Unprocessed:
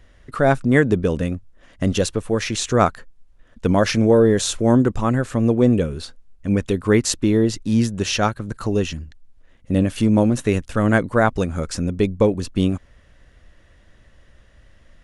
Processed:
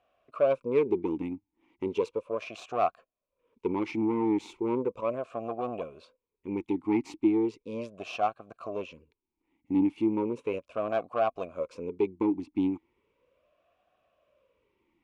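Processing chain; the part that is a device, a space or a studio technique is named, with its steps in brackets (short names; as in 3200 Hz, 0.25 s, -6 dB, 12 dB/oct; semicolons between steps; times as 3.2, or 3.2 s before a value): talk box (tube stage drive 13 dB, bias 0.75; vowel sweep a-u 0.36 Hz); gain +4 dB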